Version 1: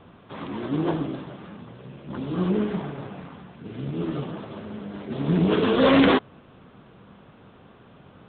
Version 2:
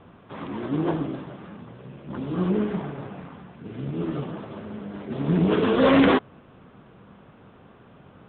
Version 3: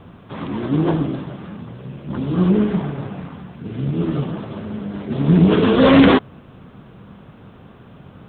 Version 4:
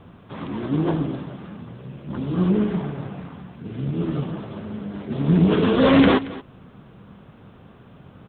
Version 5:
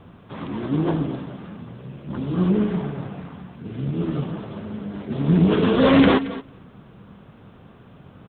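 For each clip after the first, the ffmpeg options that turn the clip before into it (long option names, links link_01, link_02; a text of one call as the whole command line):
ffmpeg -i in.wav -af "lowpass=3100" out.wav
ffmpeg -i in.wav -af "bass=frequency=250:gain=6,treble=frequency=4000:gain=9,volume=4.5dB" out.wav
ffmpeg -i in.wav -af "aecho=1:1:226:0.126,volume=-4dB" out.wav
ffmpeg -i in.wav -filter_complex "[0:a]asplit=2[link_01][link_02];[link_02]adelay=221.6,volume=-19dB,highshelf=frequency=4000:gain=-4.99[link_03];[link_01][link_03]amix=inputs=2:normalize=0" out.wav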